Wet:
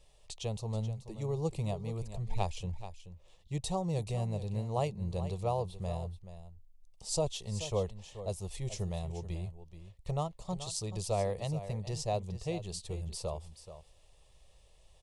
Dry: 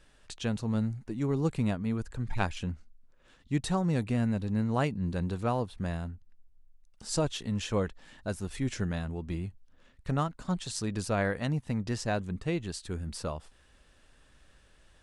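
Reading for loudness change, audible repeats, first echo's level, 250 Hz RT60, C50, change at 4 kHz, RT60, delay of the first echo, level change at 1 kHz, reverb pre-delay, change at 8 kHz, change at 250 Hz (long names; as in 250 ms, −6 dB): −4.0 dB, 1, −12.5 dB, no reverb audible, no reverb audible, −2.5 dB, no reverb audible, 430 ms, −2.5 dB, no reverb audible, −0.5 dB, −10.0 dB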